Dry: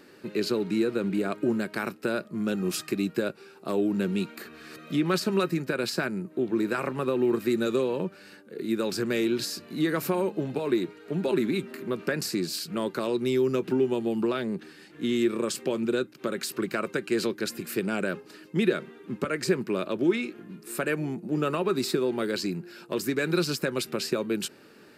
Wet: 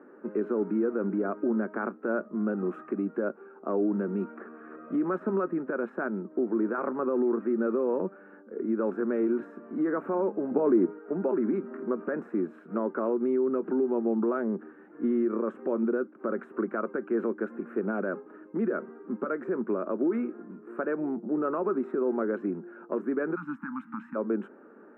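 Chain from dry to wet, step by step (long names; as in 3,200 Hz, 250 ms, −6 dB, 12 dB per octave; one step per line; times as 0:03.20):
brickwall limiter −20.5 dBFS, peak gain reduction 9 dB
0:10.51–0:10.99: low-shelf EQ 460 Hz +8 dB
0:23.35–0:24.15: time-frequency box erased 320–800 Hz
elliptic band-pass filter 220–1,400 Hz, stop band 50 dB
level +2.5 dB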